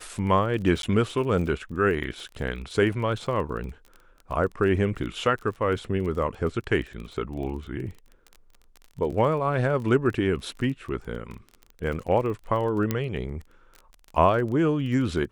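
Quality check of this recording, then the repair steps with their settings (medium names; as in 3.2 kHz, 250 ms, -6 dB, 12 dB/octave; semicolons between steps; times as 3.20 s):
crackle 27 per s -34 dBFS
0.82–0.83 s: dropout 12 ms
12.91 s: pop -11 dBFS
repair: de-click; interpolate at 0.82 s, 12 ms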